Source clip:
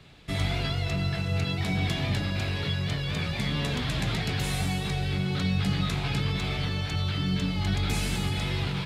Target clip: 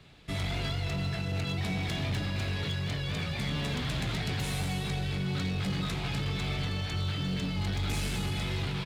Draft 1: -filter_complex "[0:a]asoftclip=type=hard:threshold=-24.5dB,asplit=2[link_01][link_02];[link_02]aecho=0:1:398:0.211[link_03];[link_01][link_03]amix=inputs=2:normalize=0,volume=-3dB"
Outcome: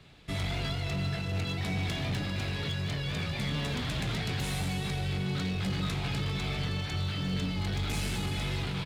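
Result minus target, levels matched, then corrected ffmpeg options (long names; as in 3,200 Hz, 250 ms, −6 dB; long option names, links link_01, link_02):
echo 155 ms late
-filter_complex "[0:a]asoftclip=type=hard:threshold=-24.5dB,asplit=2[link_01][link_02];[link_02]aecho=0:1:243:0.211[link_03];[link_01][link_03]amix=inputs=2:normalize=0,volume=-3dB"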